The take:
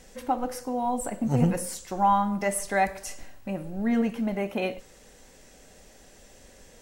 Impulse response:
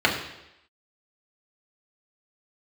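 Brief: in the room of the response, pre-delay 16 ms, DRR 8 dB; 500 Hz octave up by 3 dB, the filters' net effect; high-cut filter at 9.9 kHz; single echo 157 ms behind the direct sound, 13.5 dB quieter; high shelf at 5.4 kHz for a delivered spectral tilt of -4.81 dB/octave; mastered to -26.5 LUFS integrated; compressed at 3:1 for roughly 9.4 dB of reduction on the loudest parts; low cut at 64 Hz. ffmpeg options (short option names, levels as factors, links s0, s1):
-filter_complex "[0:a]highpass=64,lowpass=9900,equalizer=f=500:t=o:g=3.5,highshelf=f=5400:g=6,acompressor=threshold=0.0355:ratio=3,aecho=1:1:157:0.211,asplit=2[s0][s1];[1:a]atrim=start_sample=2205,adelay=16[s2];[s1][s2]afir=irnorm=-1:irlink=0,volume=0.0473[s3];[s0][s3]amix=inputs=2:normalize=0,volume=1.88"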